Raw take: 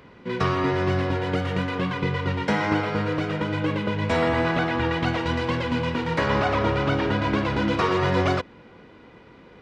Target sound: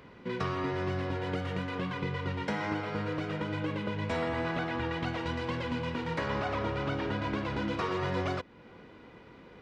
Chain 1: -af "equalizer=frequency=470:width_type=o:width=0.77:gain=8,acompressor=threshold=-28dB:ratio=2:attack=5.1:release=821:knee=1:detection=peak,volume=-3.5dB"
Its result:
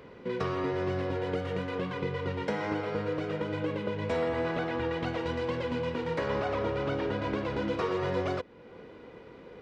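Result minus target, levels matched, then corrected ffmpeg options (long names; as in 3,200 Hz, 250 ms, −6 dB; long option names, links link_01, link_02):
500 Hz band +3.5 dB
-af "acompressor=threshold=-28dB:ratio=2:attack=5.1:release=821:knee=1:detection=peak,volume=-3.5dB"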